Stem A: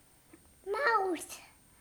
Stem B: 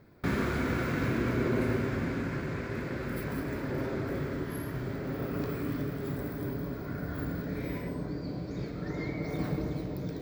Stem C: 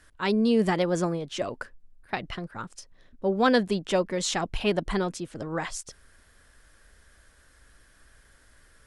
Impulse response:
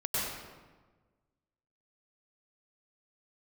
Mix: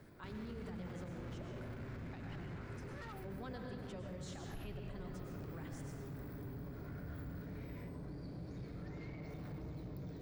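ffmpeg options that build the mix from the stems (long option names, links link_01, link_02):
-filter_complex "[0:a]adelay=2150,volume=-4dB[link_01];[1:a]volume=-1.5dB[link_02];[2:a]volume=-17dB,asplit=3[link_03][link_04][link_05];[link_04]volume=-6.5dB[link_06];[link_05]apad=whole_len=174492[link_07];[link_01][link_07]sidechaincompress=threshold=-58dB:ratio=8:attack=16:release=743[link_08];[link_08][link_02]amix=inputs=2:normalize=0,asoftclip=type=tanh:threshold=-34.5dB,acompressor=threshold=-39dB:ratio=6,volume=0dB[link_09];[3:a]atrim=start_sample=2205[link_10];[link_06][link_10]afir=irnorm=-1:irlink=0[link_11];[link_03][link_09][link_11]amix=inputs=3:normalize=0,acrossover=split=140[link_12][link_13];[link_13]acompressor=threshold=-55dB:ratio=2[link_14];[link_12][link_14]amix=inputs=2:normalize=0,alimiter=level_in=13.5dB:limit=-24dB:level=0:latency=1:release=52,volume=-13.5dB"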